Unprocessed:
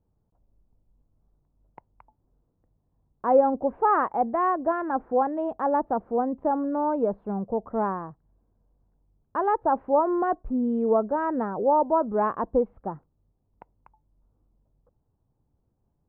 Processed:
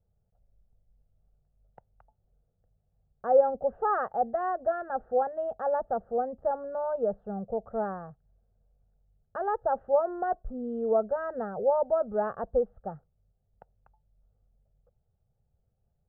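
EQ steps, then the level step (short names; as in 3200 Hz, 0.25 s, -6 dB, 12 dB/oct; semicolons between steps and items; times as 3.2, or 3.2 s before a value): air absorption 62 m; high shelf 2000 Hz -8.5 dB; fixed phaser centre 1500 Hz, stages 8; 0.0 dB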